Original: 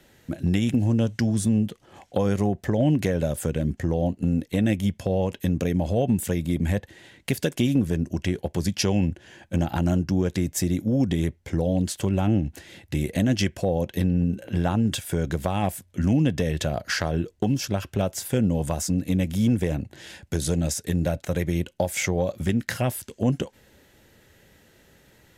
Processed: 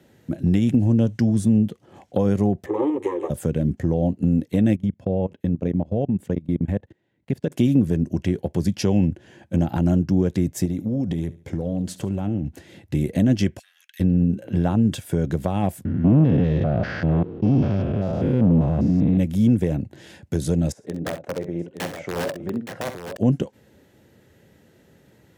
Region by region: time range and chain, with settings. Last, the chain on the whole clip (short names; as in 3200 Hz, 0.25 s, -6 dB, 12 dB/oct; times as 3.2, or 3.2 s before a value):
2.66–3.3 minimum comb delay 9.8 ms + speaker cabinet 240–9300 Hz, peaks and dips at 360 Hz +9 dB, 540 Hz +4 dB, 880 Hz +4 dB, 1300 Hz +4 dB, 2600 Hz -5 dB + fixed phaser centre 970 Hz, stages 8
4.76–7.52 LPF 2100 Hz 6 dB/oct + level quantiser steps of 24 dB
10.65–12.47 compressor 4:1, threshold -24 dBFS + feedback echo 71 ms, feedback 35%, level -18 dB
13.59–14 half-wave gain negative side -3 dB + Chebyshev high-pass 1600 Hz, order 5
15.85–19.18 stepped spectrum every 0.2 s + sample leveller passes 2 + air absorption 300 m
20.72–23.17 band-pass 610 Hz, Q 0.99 + wrapped overs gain 20.5 dB + tapped delay 47/65/870 ms -16.5/-10.5/-8 dB
whole clip: HPF 99 Hz; tilt shelf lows +5.5 dB, about 740 Hz